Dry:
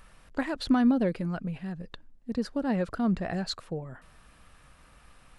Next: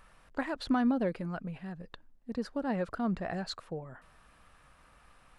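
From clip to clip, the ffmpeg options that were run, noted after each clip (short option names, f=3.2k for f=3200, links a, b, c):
-af "equalizer=f=1k:w=0.53:g=5.5,volume=-6.5dB"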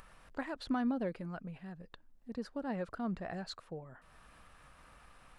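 -af "acompressor=mode=upward:threshold=-44dB:ratio=2.5,volume=-5.5dB"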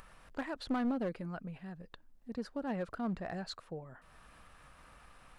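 -af "aeval=exprs='clip(val(0),-1,0.0237)':c=same,volume=1dB"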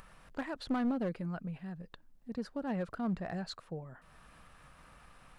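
-af "equalizer=f=160:t=o:w=0.77:g=4.5"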